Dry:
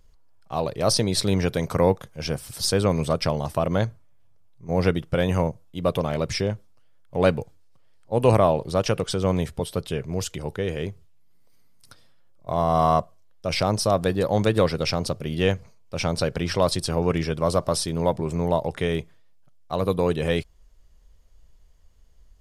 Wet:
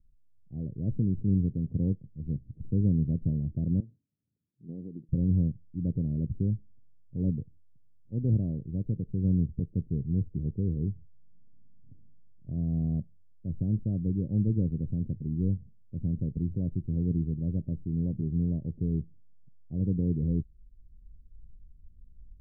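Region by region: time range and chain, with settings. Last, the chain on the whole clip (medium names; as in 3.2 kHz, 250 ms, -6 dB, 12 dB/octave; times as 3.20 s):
3.80–5.09 s: compression 5:1, threshold -28 dBFS + high-pass 270 Hz
whole clip: level rider; inverse Chebyshev low-pass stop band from 1.2 kHz, stop band 70 dB; trim -7.5 dB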